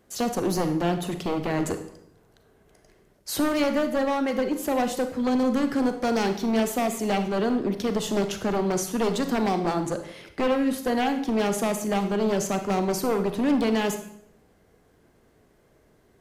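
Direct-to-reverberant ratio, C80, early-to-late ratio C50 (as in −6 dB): 7.5 dB, 12.5 dB, 9.5 dB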